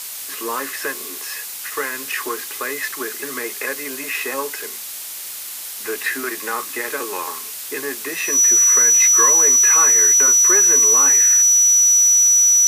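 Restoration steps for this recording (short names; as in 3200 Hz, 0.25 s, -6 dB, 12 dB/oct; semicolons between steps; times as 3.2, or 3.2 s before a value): notch 5900 Hz, Q 30; noise print and reduce 30 dB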